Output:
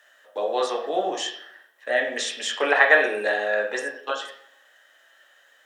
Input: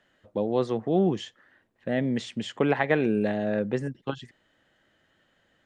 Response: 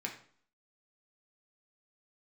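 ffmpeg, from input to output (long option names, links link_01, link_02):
-filter_complex "[0:a]highpass=frequency=510:width=0.5412,highpass=frequency=510:width=1.3066,aemphasis=mode=production:type=75kf[link_01];[1:a]atrim=start_sample=2205,asetrate=33075,aresample=44100[link_02];[link_01][link_02]afir=irnorm=-1:irlink=0,volume=5dB"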